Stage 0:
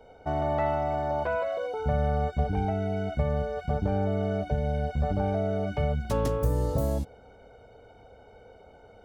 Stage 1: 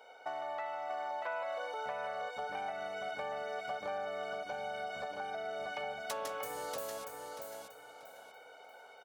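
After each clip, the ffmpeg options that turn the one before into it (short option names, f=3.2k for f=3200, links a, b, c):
-filter_complex "[0:a]highpass=980,acompressor=threshold=-42dB:ratio=6,asplit=2[a][b];[b]aecho=0:1:636|1272|1908|2544:0.562|0.157|0.0441|0.0123[c];[a][c]amix=inputs=2:normalize=0,volume=4.5dB"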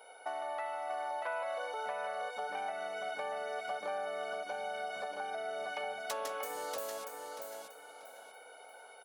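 -af "highpass=260,aeval=exprs='val(0)+0.000562*sin(2*PI*10000*n/s)':c=same,volume=1dB"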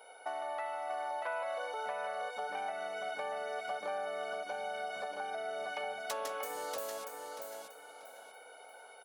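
-af anull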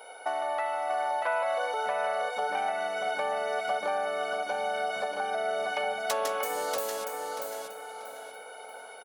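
-filter_complex "[0:a]asplit=2[a][b];[b]adelay=686,lowpass=f=2k:p=1,volume=-13dB,asplit=2[c][d];[d]adelay=686,lowpass=f=2k:p=1,volume=0.49,asplit=2[e][f];[f]adelay=686,lowpass=f=2k:p=1,volume=0.49,asplit=2[g][h];[h]adelay=686,lowpass=f=2k:p=1,volume=0.49,asplit=2[i][j];[j]adelay=686,lowpass=f=2k:p=1,volume=0.49[k];[a][c][e][g][i][k]amix=inputs=6:normalize=0,volume=8dB"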